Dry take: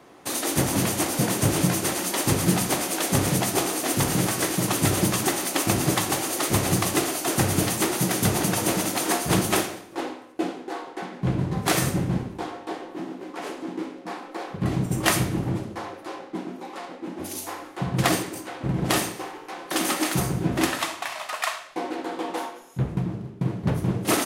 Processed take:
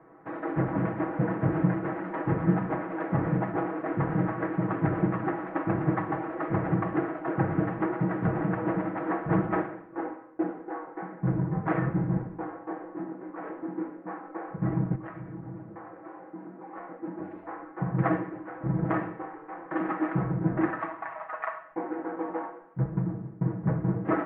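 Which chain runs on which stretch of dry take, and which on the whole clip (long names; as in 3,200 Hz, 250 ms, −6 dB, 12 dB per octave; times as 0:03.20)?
0:14.95–0:16.72: high-pass filter 54 Hz + downward compressor 3 to 1, threshold −37 dBFS
whole clip: Butterworth low-pass 1,800 Hz 36 dB per octave; comb filter 6.2 ms, depth 76%; level −5.5 dB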